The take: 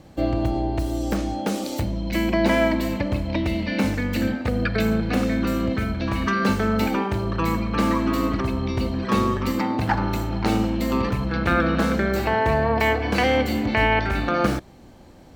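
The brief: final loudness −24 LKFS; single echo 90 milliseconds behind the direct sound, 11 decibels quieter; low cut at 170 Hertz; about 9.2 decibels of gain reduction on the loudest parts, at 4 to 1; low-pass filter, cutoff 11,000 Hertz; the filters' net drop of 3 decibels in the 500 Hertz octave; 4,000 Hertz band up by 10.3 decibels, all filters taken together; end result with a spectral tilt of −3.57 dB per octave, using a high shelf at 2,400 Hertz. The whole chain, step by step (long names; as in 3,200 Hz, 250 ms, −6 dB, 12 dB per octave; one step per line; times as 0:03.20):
high-pass filter 170 Hz
low-pass filter 11,000 Hz
parametric band 500 Hz −4.5 dB
high-shelf EQ 2,400 Hz +9 dB
parametric band 4,000 Hz +5.5 dB
downward compressor 4 to 1, threshold −25 dBFS
single-tap delay 90 ms −11 dB
level +3.5 dB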